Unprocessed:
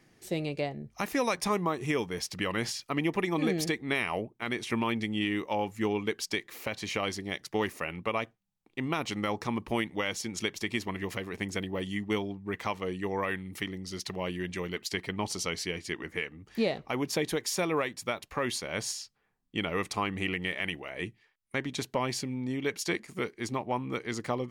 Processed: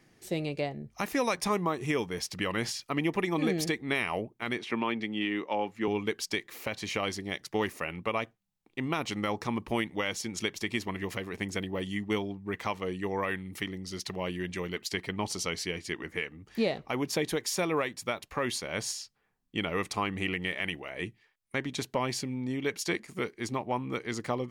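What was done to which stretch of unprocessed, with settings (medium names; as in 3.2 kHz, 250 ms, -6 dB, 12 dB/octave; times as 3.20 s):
4.58–5.88 s: three-band isolator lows -14 dB, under 180 Hz, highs -15 dB, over 4.6 kHz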